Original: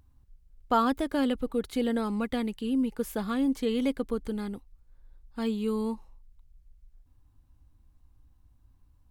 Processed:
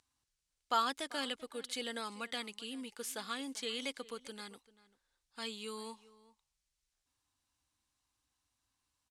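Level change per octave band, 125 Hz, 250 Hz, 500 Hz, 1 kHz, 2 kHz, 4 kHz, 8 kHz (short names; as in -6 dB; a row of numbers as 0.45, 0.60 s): n/a, -19.0 dB, -13.0 dB, -6.5 dB, -2.0 dB, +2.5 dB, +3.0 dB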